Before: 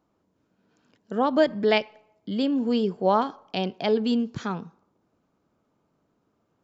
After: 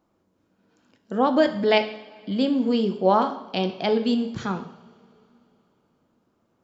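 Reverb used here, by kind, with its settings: two-slope reverb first 0.68 s, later 3.3 s, from -20 dB, DRR 7 dB; trim +1.5 dB

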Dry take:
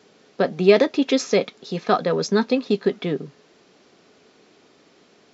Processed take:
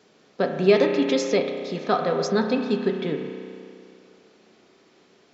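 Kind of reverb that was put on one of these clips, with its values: spring tank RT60 2.4 s, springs 32 ms, chirp 45 ms, DRR 4 dB; trim -3.5 dB

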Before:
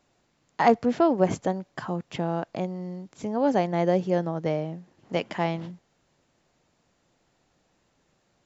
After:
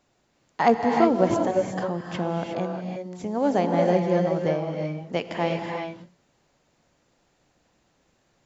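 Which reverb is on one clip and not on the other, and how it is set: gated-style reverb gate 390 ms rising, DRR 1.5 dB

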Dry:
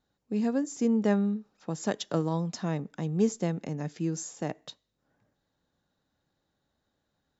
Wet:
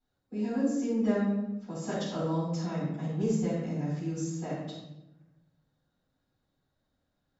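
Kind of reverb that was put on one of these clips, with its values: simulated room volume 330 m³, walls mixed, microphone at 7.5 m; trim -18 dB

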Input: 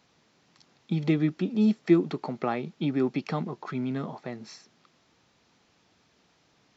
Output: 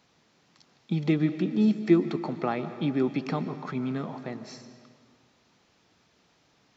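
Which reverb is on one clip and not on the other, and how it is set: algorithmic reverb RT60 2 s, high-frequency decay 0.75×, pre-delay 95 ms, DRR 11 dB

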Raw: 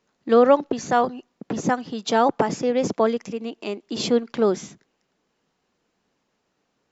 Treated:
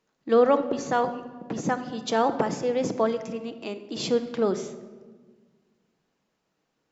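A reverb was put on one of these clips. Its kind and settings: simulated room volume 1400 m³, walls mixed, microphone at 0.62 m; trim -4.5 dB

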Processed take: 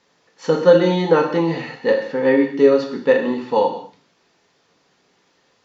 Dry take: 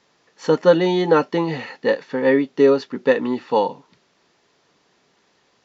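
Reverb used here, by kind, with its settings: gated-style reverb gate 250 ms falling, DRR 2 dB; trim -1.5 dB

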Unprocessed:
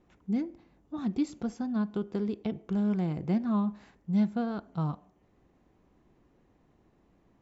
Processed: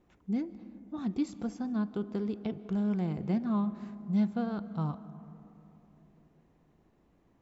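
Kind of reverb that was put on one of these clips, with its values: algorithmic reverb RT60 3.3 s, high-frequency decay 0.3×, pre-delay 110 ms, DRR 15.5 dB; trim -2 dB

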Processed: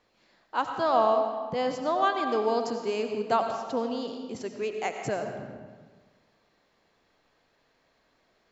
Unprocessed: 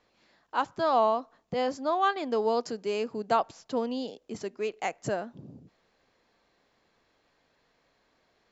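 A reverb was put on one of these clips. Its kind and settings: algorithmic reverb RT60 1.5 s, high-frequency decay 0.75×, pre-delay 50 ms, DRR 5 dB

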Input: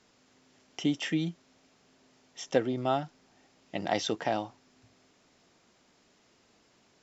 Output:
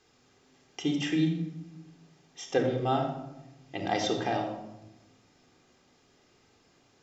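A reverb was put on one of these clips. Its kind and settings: simulated room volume 3700 m³, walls furnished, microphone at 3.8 m; trim -2.5 dB

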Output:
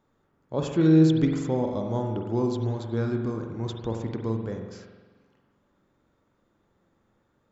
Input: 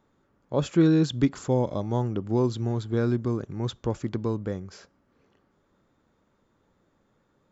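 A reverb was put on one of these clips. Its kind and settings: spring tank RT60 1.3 s, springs 44 ms, chirp 70 ms, DRR 2.5 dB; trim -3 dB

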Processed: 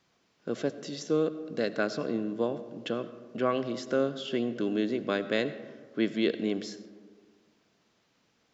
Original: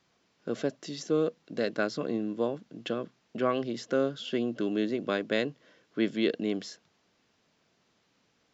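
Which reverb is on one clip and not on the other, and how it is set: algorithmic reverb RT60 1.7 s, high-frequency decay 0.35×, pre-delay 45 ms, DRR 13 dB

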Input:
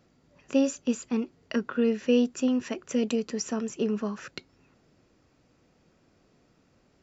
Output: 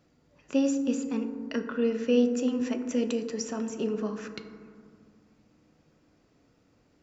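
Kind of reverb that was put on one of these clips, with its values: FDN reverb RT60 2 s, low-frequency decay 1.45×, high-frequency decay 0.3×, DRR 7 dB; trim -2.5 dB

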